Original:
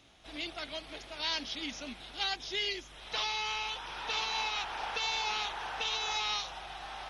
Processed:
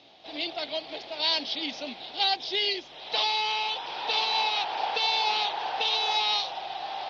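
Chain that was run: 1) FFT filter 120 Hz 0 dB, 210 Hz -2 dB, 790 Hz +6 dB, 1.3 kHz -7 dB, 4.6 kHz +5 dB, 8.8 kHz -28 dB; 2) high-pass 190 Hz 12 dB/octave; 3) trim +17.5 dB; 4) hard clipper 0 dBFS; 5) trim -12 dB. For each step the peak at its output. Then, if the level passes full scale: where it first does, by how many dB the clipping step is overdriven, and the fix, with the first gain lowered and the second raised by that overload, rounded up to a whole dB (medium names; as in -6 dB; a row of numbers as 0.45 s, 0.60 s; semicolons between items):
-19.0 dBFS, -19.5 dBFS, -2.0 dBFS, -2.0 dBFS, -14.0 dBFS; nothing clips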